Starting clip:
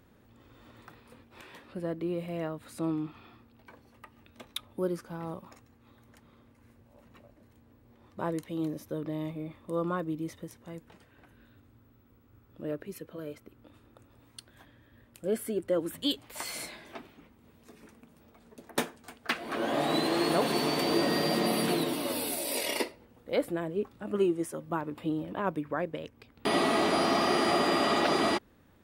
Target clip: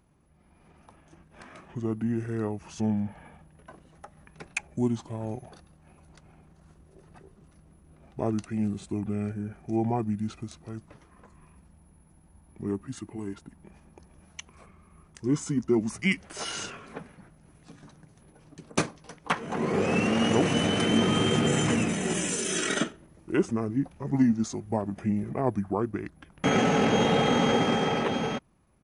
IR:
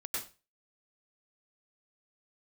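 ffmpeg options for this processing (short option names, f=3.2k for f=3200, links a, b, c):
-af "dynaudnorm=f=190:g=13:m=8.5dB,asetrate=29433,aresample=44100,atempo=1.49831,volume=-4dB"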